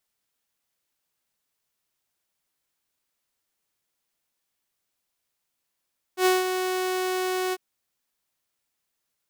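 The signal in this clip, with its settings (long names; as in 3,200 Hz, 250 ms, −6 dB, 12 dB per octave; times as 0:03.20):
note with an ADSR envelope saw 370 Hz, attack 86 ms, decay 179 ms, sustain −8 dB, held 1.36 s, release 39 ms −14 dBFS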